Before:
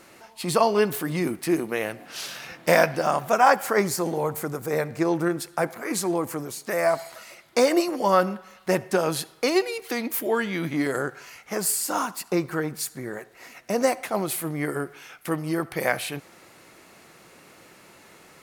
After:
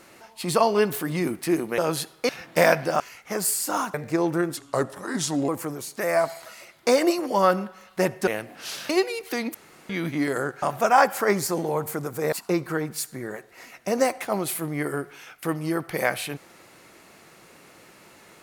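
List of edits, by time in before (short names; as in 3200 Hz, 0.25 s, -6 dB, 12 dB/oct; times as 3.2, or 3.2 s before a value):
1.78–2.4 swap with 8.97–9.48
3.11–4.81 swap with 11.21–12.15
5.44–6.18 speed 81%
10.13–10.48 room tone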